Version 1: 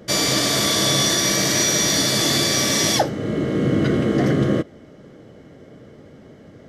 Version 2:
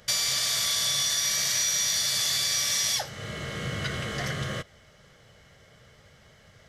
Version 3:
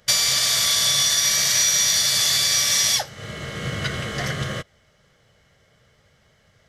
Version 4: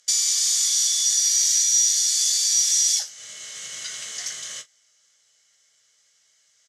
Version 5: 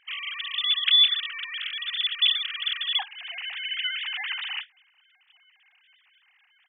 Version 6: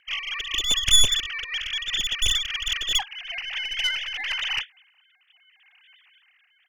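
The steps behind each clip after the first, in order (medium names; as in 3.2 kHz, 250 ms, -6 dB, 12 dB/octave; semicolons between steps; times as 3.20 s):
amplifier tone stack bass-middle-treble 10-0-10; compression 3:1, threshold -30 dBFS, peak gain reduction 9 dB; trim +4 dB
upward expansion 1.5:1, over -48 dBFS; trim +8 dB
in parallel at +1 dB: compressor with a negative ratio -27 dBFS, ratio -1; on the sum: band-pass filter 6.9 kHz, Q 2.9; early reflections 18 ms -9.5 dB, 42 ms -17.5 dB; trim +1.5 dB
formants replaced by sine waves; trim -5 dB
tracing distortion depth 0.082 ms; in parallel at -8 dB: wavefolder -26 dBFS; on the sum: rotary cabinet horn 5 Hz, later 0.75 Hz, at 3.34 s; trim +3 dB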